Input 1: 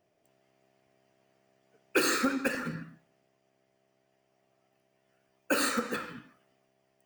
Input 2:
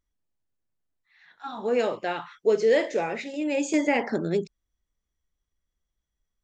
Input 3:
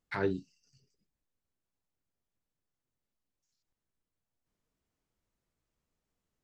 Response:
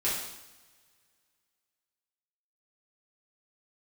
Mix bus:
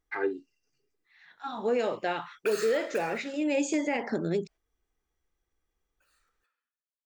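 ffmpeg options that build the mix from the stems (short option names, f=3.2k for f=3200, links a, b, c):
-filter_complex "[0:a]highpass=1k,adelay=500,volume=-4.5dB[a];[1:a]volume=-0.5dB,asplit=2[b][c];[2:a]highpass=f=220:w=0.5412,highpass=f=220:w=1.3066,highshelf=f=2.9k:t=q:w=1.5:g=-9.5,aecho=1:1:2.5:0.9,volume=-2dB[d];[c]apad=whole_len=333209[e];[a][e]sidechaingate=range=-37dB:threshold=-45dB:ratio=16:detection=peak[f];[f][b][d]amix=inputs=3:normalize=0,alimiter=limit=-18.5dB:level=0:latency=1:release=190"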